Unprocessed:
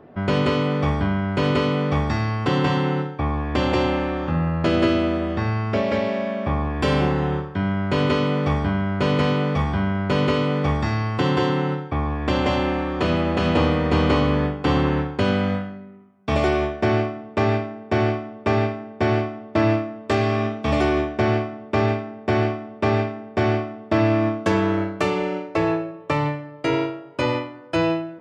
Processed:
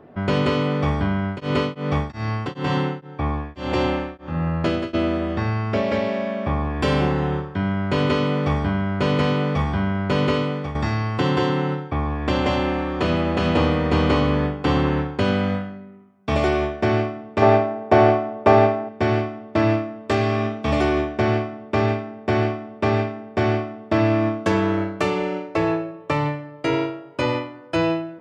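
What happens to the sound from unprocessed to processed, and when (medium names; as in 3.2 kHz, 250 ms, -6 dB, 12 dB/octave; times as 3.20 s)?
1.24–4.93 s: tremolo of two beating tones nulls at 3.2 Hz -> 1.2 Hz
10.35–10.75 s: fade out, to -11.5 dB
17.42–18.89 s: peaking EQ 710 Hz +10.5 dB 1.8 oct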